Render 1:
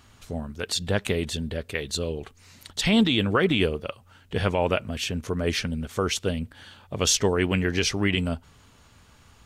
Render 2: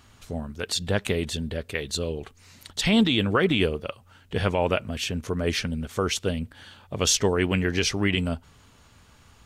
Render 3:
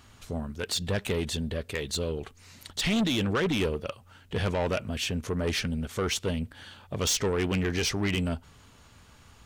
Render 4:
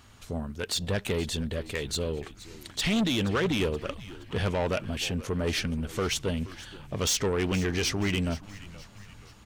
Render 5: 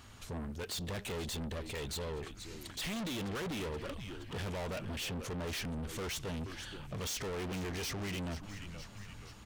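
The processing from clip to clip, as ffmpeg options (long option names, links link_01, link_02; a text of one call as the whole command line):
ffmpeg -i in.wav -af anull out.wav
ffmpeg -i in.wav -af "asoftclip=type=tanh:threshold=-22dB" out.wav
ffmpeg -i in.wav -filter_complex "[0:a]asplit=5[link_01][link_02][link_03][link_04][link_05];[link_02]adelay=474,afreqshift=-100,volume=-17dB[link_06];[link_03]adelay=948,afreqshift=-200,volume=-23dB[link_07];[link_04]adelay=1422,afreqshift=-300,volume=-29dB[link_08];[link_05]adelay=1896,afreqshift=-400,volume=-35.1dB[link_09];[link_01][link_06][link_07][link_08][link_09]amix=inputs=5:normalize=0" out.wav
ffmpeg -i in.wav -af "asoftclip=type=tanh:threshold=-37dB" out.wav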